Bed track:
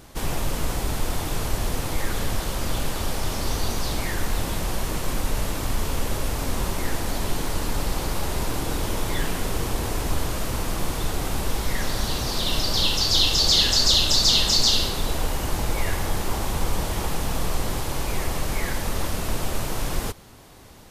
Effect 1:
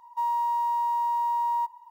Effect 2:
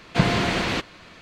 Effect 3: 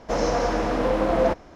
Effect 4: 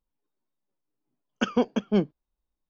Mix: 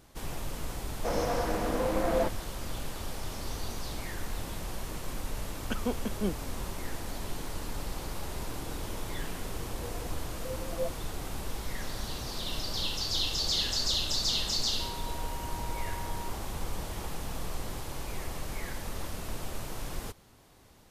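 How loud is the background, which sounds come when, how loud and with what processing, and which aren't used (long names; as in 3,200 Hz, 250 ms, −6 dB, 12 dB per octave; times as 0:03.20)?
bed track −11 dB
0:00.95: mix in 3 −7.5 dB
0:04.29: mix in 4 −9 dB
0:09.60: mix in 3 −15 dB + every bin expanded away from the loudest bin 2.5 to 1
0:14.63: mix in 1 −17.5 dB + low-pass filter 11,000 Hz
not used: 2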